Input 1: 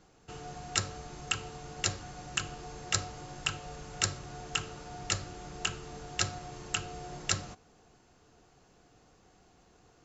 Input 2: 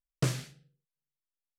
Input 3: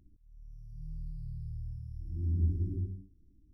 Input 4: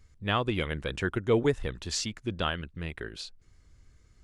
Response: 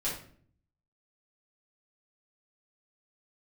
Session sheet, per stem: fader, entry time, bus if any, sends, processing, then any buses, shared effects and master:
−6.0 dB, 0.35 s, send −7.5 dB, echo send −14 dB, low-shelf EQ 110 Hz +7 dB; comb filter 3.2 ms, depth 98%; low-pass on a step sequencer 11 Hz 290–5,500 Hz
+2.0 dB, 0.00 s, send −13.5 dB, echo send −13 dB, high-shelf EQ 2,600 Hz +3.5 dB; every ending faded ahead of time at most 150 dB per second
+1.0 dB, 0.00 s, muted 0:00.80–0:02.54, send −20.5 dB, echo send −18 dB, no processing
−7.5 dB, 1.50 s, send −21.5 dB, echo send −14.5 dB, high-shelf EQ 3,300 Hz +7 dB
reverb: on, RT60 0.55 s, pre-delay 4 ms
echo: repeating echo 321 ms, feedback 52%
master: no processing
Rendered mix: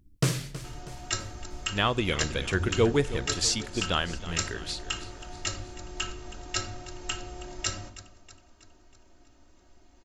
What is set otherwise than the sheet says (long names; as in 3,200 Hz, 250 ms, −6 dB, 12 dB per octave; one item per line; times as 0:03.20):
stem 1: missing low-pass on a step sequencer 11 Hz 290–5,500 Hz
stem 4 −7.5 dB → +0.5 dB